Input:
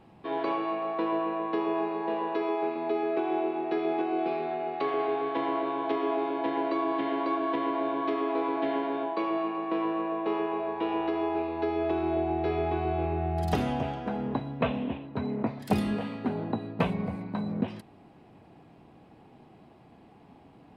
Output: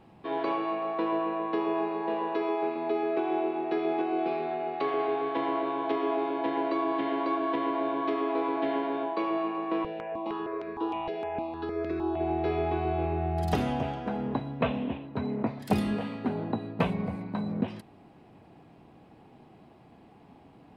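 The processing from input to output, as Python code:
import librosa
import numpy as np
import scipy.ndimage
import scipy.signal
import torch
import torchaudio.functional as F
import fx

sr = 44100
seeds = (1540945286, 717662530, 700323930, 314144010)

y = fx.phaser_held(x, sr, hz=6.5, low_hz=300.0, high_hz=3100.0, at=(9.83, 12.19), fade=0.02)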